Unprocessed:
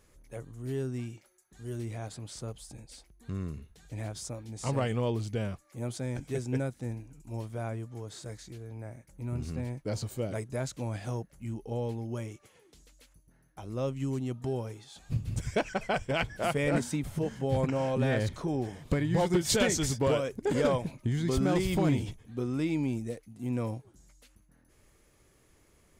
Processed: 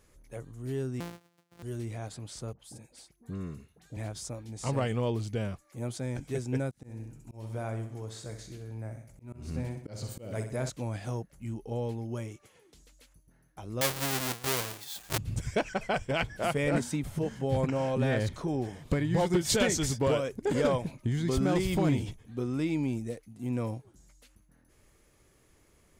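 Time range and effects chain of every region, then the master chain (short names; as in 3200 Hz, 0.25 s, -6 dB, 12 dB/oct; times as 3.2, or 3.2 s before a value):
1–1.63 sample sorter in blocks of 256 samples + HPF 130 Hz
2.53–3.97 HPF 110 Hz + bell 4000 Hz -3 dB 2.2 oct + dispersion highs, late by 63 ms, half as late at 1400 Hz
6.71–10.7 feedback echo 63 ms, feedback 49%, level -9 dB + auto swell 0.213 s
13.81–15.18 half-waves squared off + tilt +3 dB/oct
whole clip: dry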